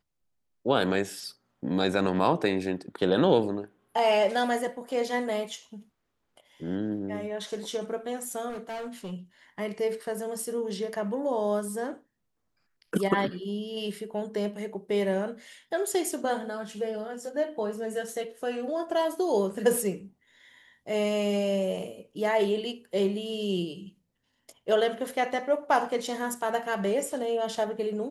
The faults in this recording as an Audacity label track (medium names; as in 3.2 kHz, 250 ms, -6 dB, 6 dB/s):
8.490000	9.130000	clipped -33 dBFS